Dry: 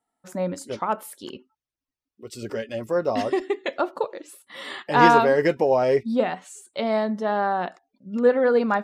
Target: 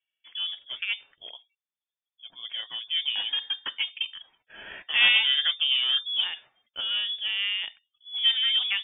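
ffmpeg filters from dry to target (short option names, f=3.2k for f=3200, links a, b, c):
-af "aeval=exprs='0.794*(cos(1*acos(clip(val(0)/0.794,-1,1)))-cos(1*PI/2))+0.0501*(cos(6*acos(clip(val(0)/0.794,-1,1)))-cos(6*PI/2))':c=same,acrusher=bits=7:mode=log:mix=0:aa=0.000001,lowpass=f=3.1k:t=q:w=0.5098,lowpass=f=3.1k:t=q:w=0.6013,lowpass=f=3.1k:t=q:w=0.9,lowpass=f=3.1k:t=q:w=2.563,afreqshift=-3600,volume=-5.5dB"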